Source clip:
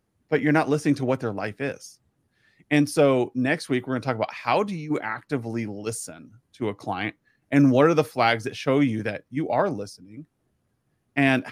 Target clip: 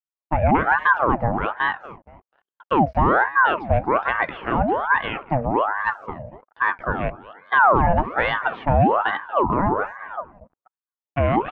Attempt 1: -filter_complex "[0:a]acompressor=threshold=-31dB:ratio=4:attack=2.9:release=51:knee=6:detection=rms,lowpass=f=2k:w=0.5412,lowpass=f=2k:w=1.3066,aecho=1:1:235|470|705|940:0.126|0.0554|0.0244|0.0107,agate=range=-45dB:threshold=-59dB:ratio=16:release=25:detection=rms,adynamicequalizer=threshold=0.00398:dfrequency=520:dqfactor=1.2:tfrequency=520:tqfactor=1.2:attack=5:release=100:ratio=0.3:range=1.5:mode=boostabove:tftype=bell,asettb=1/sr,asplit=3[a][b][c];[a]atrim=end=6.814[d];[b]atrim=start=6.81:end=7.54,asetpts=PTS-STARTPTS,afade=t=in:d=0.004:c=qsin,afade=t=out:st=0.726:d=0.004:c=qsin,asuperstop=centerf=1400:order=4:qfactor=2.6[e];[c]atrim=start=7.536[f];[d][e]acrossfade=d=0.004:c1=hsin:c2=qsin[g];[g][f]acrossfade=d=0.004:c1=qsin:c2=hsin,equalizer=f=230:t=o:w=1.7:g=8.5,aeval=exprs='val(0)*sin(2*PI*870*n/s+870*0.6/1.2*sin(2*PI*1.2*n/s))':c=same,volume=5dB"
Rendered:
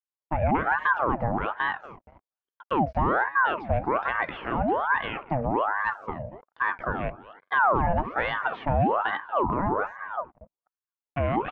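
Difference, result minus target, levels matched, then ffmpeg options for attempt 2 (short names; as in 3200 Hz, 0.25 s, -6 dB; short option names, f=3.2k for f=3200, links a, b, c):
compressor: peak gain reduction +6.5 dB
-filter_complex "[0:a]acompressor=threshold=-22.5dB:ratio=4:attack=2.9:release=51:knee=6:detection=rms,lowpass=f=2k:w=0.5412,lowpass=f=2k:w=1.3066,aecho=1:1:235|470|705|940:0.126|0.0554|0.0244|0.0107,agate=range=-45dB:threshold=-59dB:ratio=16:release=25:detection=rms,adynamicequalizer=threshold=0.00398:dfrequency=520:dqfactor=1.2:tfrequency=520:tqfactor=1.2:attack=5:release=100:ratio=0.3:range=1.5:mode=boostabove:tftype=bell,asettb=1/sr,asplit=3[a][b][c];[a]atrim=end=6.814[d];[b]atrim=start=6.81:end=7.54,asetpts=PTS-STARTPTS,afade=t=in:d=0.004:c=qsin,afade=t=out:st=0.726:d=0.004:c=qsin,asuperstop=centerf=1400:order=4:qfactor=2.6[e];[c]atrim=start=7.536[f];[d][e]acrossfade=d=0.004:c1=hsin:c2=qsin[g];[g][f]acrossfade=d=0.004:c1=qsin:c2=hsin,equalizer=f=230:t=o:w=1.7:g=8.5,aeval=exprs='val(0)*sin(2*PI*870*n/s+870*0.6/1.2*sin(2*PI*1.2*n/s))':c=same,volume=5dB"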